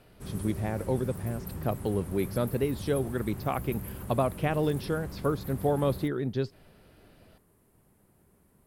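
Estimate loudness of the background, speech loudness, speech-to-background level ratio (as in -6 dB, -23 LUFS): -40.5 LUFS, -31.0 LUFS, 9.5 dB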